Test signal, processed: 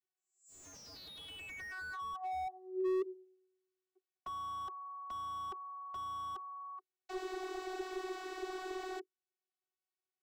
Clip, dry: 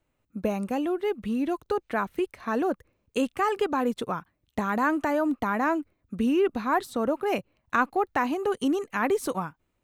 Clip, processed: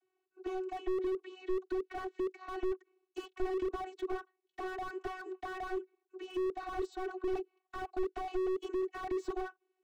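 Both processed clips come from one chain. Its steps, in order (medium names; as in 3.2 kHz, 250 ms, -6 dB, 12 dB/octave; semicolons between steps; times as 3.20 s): vocoder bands 32, saw 373 Hz; slew-rate limiter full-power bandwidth 8.8 Hz; trim +1.5 dB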